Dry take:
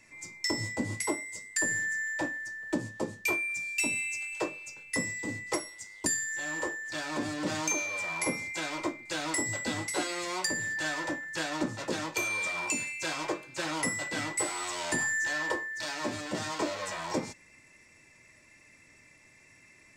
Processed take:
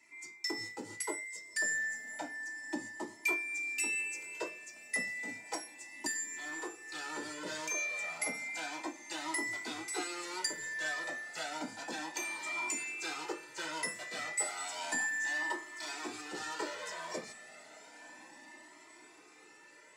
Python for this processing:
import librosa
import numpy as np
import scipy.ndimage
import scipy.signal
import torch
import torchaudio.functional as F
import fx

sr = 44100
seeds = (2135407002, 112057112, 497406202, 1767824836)

y = scipy.signal.sosfilt(scipy.signal.butter(2, 310.0, 'highpass', fs=sr, output='sos'), x)
y = fx.notch_comb(y, sr, f0_hz=550.0)
y = fx.echo_diffused(y, sr, ms=1167, feedback_pct=62, wet_db=-16)
y = fx.comb_cascade(y, sr, direction='rising', hz=0.32)